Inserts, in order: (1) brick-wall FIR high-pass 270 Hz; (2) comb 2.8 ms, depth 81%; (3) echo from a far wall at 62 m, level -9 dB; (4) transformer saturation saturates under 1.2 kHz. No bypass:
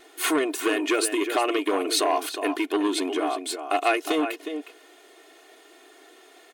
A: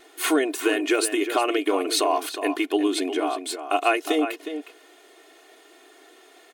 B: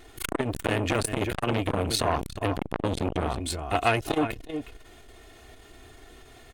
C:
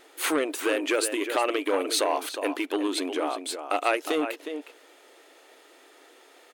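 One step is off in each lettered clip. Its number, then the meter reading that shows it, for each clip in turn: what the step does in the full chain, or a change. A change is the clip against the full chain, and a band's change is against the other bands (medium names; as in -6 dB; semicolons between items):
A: 4, loudness change +1.0 LU; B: 1, 8 kHz band -2.0 dB; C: 2, 250 Hz band -2.0 dB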